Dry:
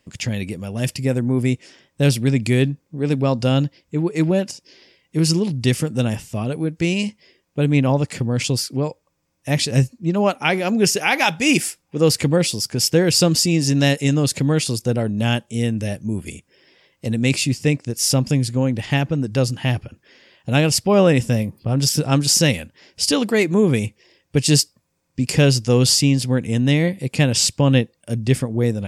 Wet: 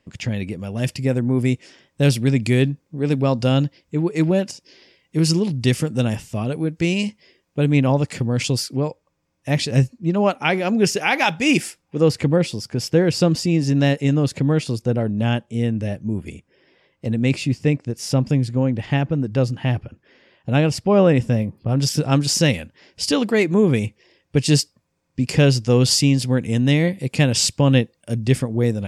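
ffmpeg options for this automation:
-af "asetnsamples=n=441:p=0,asendcmd='0.59 lowpass f 4800;1.35 lowpass f 8400;8.75 lowpass f 4000;12.03 lowpass f 1800;21.69 lowpass f 4200;25.91 lowpass f 9300',lowpass=f=2.8k:p=1"

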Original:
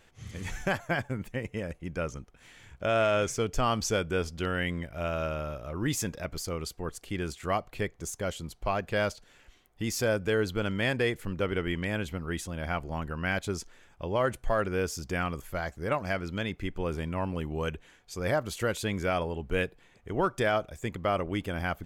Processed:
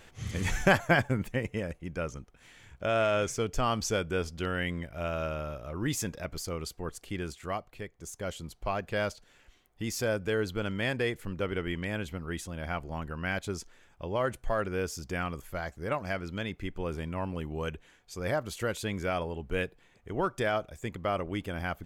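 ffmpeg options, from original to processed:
-af "volume=14dB,afade=t=out:st=0.78:d=1.05:silence=0.398107,afade=t=out:st=7.06:d=0.82:silence=0.375837,afade=t=in:st=7.88:d=0.46:silence=0.421697"

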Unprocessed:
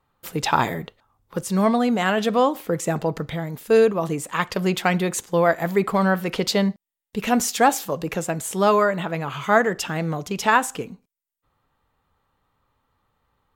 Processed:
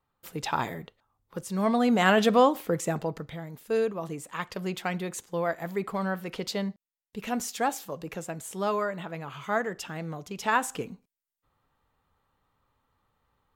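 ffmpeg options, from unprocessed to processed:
-af "volume=7.5dB,afade=t=in:st=1.57:d=0.55:silence=0.334965,afade=t=out:st=2.12:d=1.14:silence=0.281838,afade=t=in:st=10.37:d=0.47:silence=0.446684"

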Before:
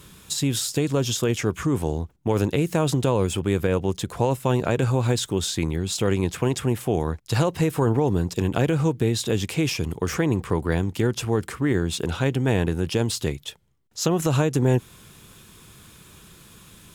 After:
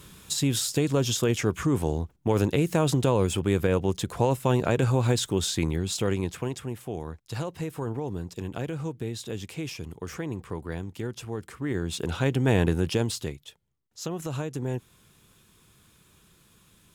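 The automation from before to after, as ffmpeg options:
-af "volume=10dB,afade=t=out:st=5.71:d=0.93:silence=0.334965,afade=t=in:st=11.48:d=1.22:silence=0.266073,afade=t=out:st=12.7:d=0.7:silence=0.266073"

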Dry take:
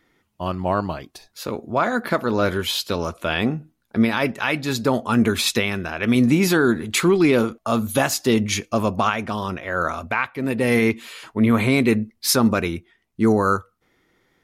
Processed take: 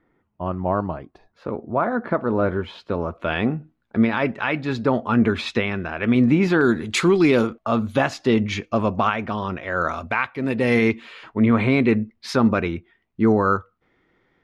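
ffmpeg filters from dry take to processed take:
-af "asetnsamples=n=441:p=0,asendcmd='3.2 lowpass f 2500;6.61 lowpass f 6500;7.47 lowpass f 3000;9.61 lowpass f 5000;10.96 lowpass f 2800',lowpass=1.3k"

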